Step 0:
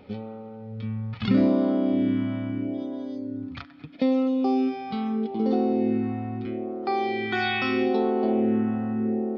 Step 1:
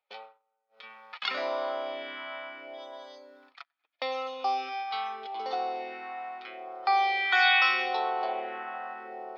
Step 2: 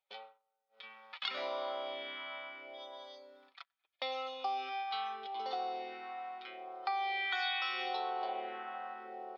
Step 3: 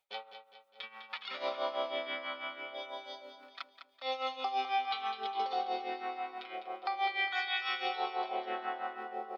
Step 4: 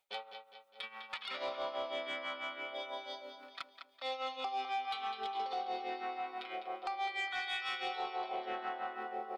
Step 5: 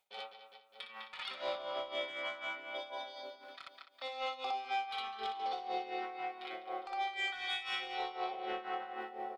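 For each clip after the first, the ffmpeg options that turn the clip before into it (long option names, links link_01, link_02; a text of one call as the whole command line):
ffmpeg -i in.wav -af "agate=range=-33dB:threshold=-34dB:ratio=16:detection=peak,highpass=frequency=750:width=0.5412,highpass=frequency=750:width=1.3066,volume=5.5dB" out.wav
ffmpeg -i in.wav -af "equalizer=frequency=3500:width_type=o:width=0.55:gain=5.5,aecho=1:1:5.2:0.35,acompressor=threshold=-26dB:ratio=6,volume=-6.5dB" out.wav
ffmpeg -i in.wav -filter_complex "[0:a]alimiter=level_in=7dB:limit=-24dB:level=0:latency=1:release=154,volume=-7dB,tremolo=f=6.1:d=0.8,asplit=2[link_01][link_02];[link_02]aecho=0:1:204|408|612|816|1020:0.335|0.164|0.0804|0.0394|0.0193[link_03];[link_01][link_03]amix=inputs=2:normalize=0,volume=8dB" out.wav
ffmpeg -i in.wav -af "acompressor=threshold=-38dB:ratio=2,asoftclip=type=tanh:threshold=-30dB,volume=1.5dB" out.wav
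ffmpeg -i in.wav -filter_complex "[0:a]asplit=2[link_01][link_02];[link_02]aecho=0:1:21|60:0.299|0.708[link_03];[link_01][link_03]amix=inputs=2:normalize=0,tremolo=f=4:d=0.68,volume=1dB" out.wav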